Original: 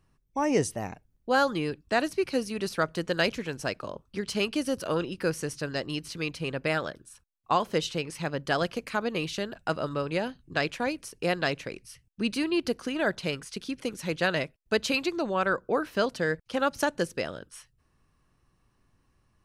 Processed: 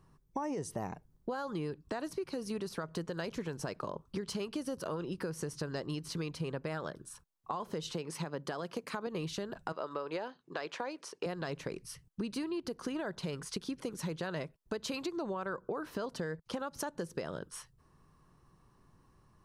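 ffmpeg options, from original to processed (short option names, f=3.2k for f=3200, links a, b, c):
-filter_complex "[0:a]asettb=1/sr,asplit=3[a][b][c];[a]atrim=end=7.944[d];[b]atrim=start=7.94:end=9.07,asetpts=PTS-STARTPTS,afade=t=in:d=0.004:c=qsin,afade=t=out:st=1.126:d=0.004:c=qsin,highpass=170[e];[c]atrim=start=9.066[f];[d][e]acrossfade=d=0.004:c1=hsin:c2=qsin[g];[g][f]acrossfade=d=0.004:c1=qsin:c2=hsin,asettb=1/sr,asplit=3[h][i][j];[h]atrim=end=9.724[k];[i]atrim=start=9.72:end=11.26,asetpts=PTS-STARTPTS,afade=t=in:d=0.004:c=qsin,afade=t=out:st=1.536:d=0.004:c=qsin,highpass=420,lowpass=5.7k[l];[j]atrim=start=11.256[m];[k][l]acrossfade=d=0.004:c1=hsin:c2=qsin[n];[n][m]acrossfade=d=0.004:c1=qsin:c2=hsin,equalizer=f=160:t=o:w=0.67:g=7,equalizer=f=400:t=o:w=0.67:g=5,equalizer=f=1k:t=o:w=0.67:g=7,equalizer=f=2.5k:t=o:w=0.67:g=-5,alimiter=limit=-20dB:level=0:latency=1:release=140,acompressor=threshold=-36dB:ratio=5,volume=1dB"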